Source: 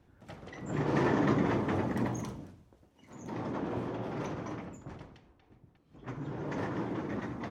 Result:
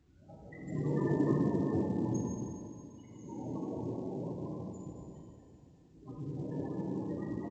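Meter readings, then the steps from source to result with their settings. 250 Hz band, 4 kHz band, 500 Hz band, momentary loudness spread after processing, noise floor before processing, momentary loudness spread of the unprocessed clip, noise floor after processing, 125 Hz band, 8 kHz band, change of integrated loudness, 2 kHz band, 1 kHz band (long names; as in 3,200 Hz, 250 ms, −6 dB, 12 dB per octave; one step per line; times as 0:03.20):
−1.0 dB, below −15 dB, −2.5 dB, 20 LU, −66 dBFS, 20 LU, −60 dBFS, −0.5 dB, can't be measured, −2.0 dB, −13.5 dB, −9.0 dB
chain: high-shelf EQ 5,100 Hz +8 dB
spectral peaks only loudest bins 16
single-tap delay 92 ms −15.5 dB
dense smooth reverb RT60 2.6 s, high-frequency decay 1×, DRR −2.5 dB
level −5 dB
mu-law 128 kbit/s 16,000 Hz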